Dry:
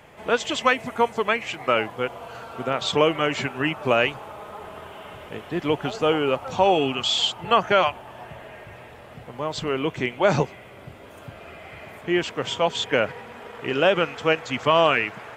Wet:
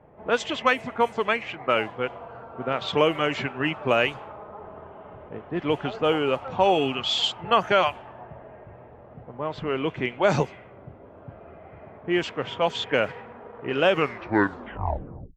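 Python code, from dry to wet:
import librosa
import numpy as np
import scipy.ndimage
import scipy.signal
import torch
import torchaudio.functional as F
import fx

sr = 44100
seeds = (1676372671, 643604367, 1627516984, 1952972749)

y = fx.tape_stop_end(x, sr, length_s=1.49)
y = fx.env_lowpass(y, sr, base_hz=750.0, full_db=-16.0)
y = y * 10.0 ** (-1.5 / 20.0)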